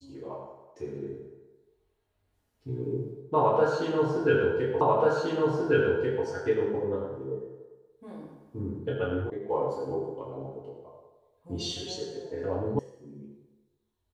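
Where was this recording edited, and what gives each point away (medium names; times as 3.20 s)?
4.81 s: repeat of the last 1.44 s
9.30 s: sound stops dead
12.79 s: sound stops dead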